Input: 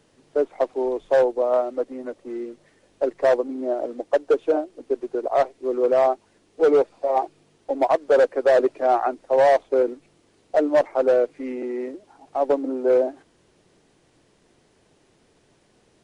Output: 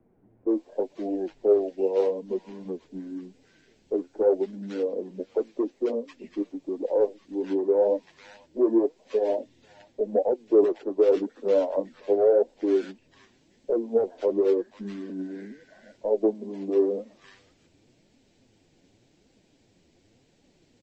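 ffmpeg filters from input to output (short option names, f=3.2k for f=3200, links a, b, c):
-filter_complex "[0:a]equalizer=f=1.6k:w=2.9:g=-11,acrossover=split=410|980[a][b][c];[a]acompressor=threshold=-38dB:ratio=6[d];[c]alimiter=level_in=5dB:limit=-24dB:level=0:latency=1:release=440,volume=-5dB[e];[d][b][e]amix=inputs=3:normalize=0,asetrate=33957,aresample=44100,flanger=delay=3.4:depth=9.5:regen=34:speed=0.88:shape=triangular,acrossover=split=1400[f][g];[g]adelay=490[h];[f][h]amix=inputs=2:normalize=0,volume=2dB"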